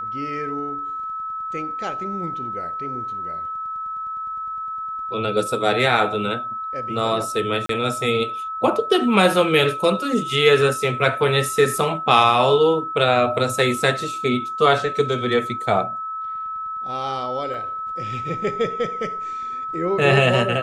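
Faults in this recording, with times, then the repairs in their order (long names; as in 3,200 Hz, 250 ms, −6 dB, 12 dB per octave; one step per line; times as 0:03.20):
whistle 1,300 Hz −26 dBFS
0:07.66–0:07.69: drop-out 33 ms
0:17.54: drop-out 2.4 ms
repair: notch filter 1,300 Hz, Q 30
repair the gap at 0:07.66, 33 ms
repair the gap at 0:17.54, 2.4 ms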